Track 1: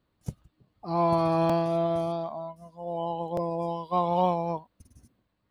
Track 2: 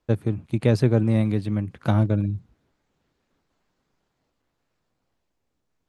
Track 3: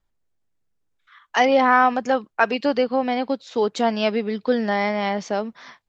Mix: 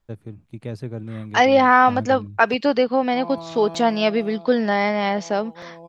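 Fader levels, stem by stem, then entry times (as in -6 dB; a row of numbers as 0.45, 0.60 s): -11.0, -12.0, +2.0 dB; 2.25, 0.00, 0.00 s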